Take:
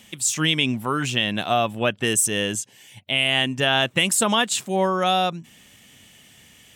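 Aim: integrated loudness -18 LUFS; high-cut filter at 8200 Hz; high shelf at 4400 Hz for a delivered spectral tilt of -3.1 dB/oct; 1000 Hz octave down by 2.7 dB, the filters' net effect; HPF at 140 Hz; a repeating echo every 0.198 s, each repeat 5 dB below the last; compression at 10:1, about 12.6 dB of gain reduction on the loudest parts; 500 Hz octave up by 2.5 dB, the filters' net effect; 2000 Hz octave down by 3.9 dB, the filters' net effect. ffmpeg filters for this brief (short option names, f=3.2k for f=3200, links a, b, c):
-af "highpass=140,lowpass=8.2k,equalizer=f=500:t=o:g=5.5,equalizer=f=1k:t=o:g=-6.5,equalizer=f=2k:t=o:g=-3,highshelf=f=4.4k:g=-3.5,acompressor=threshold=-29dB:ratio=10,aecho=1:1:198|396|594|792|990|1188|1386:0.562|0.315|0.176|0.0988|0.0553|0.031|0.0173,volume=14dB"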